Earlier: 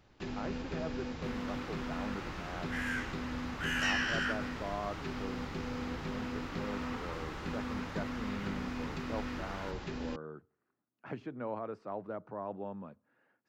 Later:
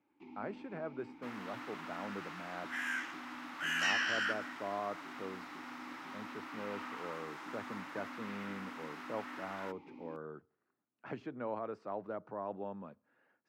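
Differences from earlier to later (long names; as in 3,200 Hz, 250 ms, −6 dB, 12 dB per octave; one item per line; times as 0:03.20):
first sound: add formant filter u
master: add low-shelf EQ 130 Hz −9 dB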